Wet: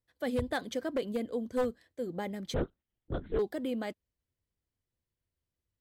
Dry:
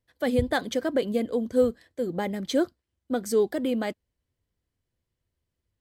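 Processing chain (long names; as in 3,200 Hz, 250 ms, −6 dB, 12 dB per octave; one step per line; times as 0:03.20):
wavefolder on the positive side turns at −16.5 dBFS
0:02.54–0:03.39: linear-prediction vocoder at 8 kHz whisper
level −7.5 dB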